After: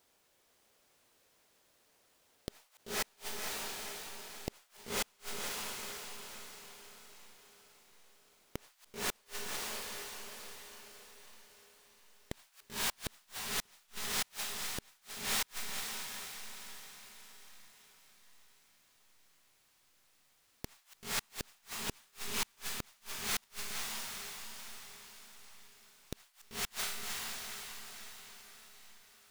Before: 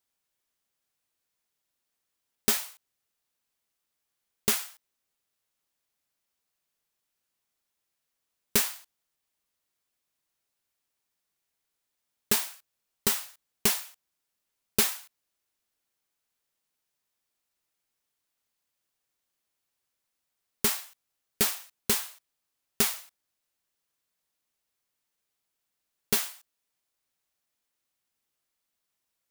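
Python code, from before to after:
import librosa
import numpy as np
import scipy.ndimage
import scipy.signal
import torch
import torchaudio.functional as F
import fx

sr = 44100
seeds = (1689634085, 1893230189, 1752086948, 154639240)

y = fx.tracing_dist(x, sr, depth_ms=0.091)
y = fx.high_shelf(y, sr, hz=8800.0, db=-6.5)
y = fx.over_compress(y, sr, threshold_db=-34.0, ratio=-1.0)
y = fx.peak_eq(y, sr, hz=490.0, db=fx.steps((0.0, 7.0), (8.71, -2.0)), octaves=1.5)
y = fx.echo_diffused(y, sr, ms=521, feedback_pct=49, wet_db=-4.5)
y = fx.gate_flip(y, sr, shuts_db=-29.0, range_db=-37)
y = F.gain(torch.from_numpy(y), 8.0).numpy()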